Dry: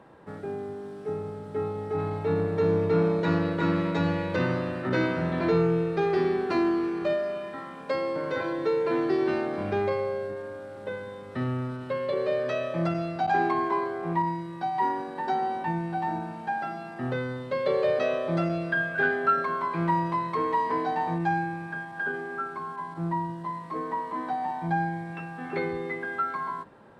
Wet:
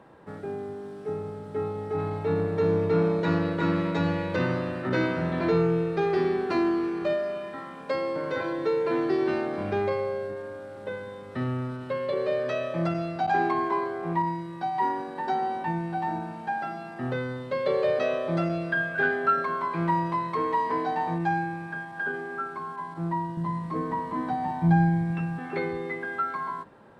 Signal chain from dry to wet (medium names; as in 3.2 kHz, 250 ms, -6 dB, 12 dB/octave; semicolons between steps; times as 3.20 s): 23.37–25.39 s: tone controls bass +14 dB, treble +1 dB